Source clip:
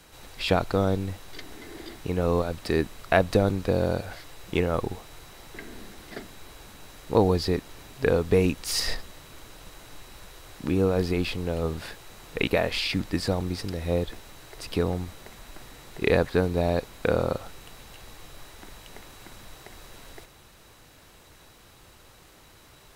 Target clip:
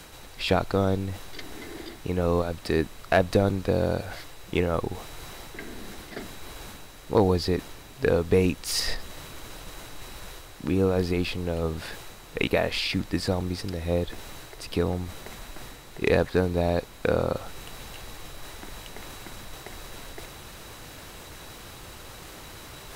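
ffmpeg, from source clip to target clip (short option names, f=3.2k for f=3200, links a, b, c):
-af "areverse,acompressor=mode=upward:threshold=-32dB:ratio=2.5,areverse,asoftclip=type=hard:threshold=-9.5dB"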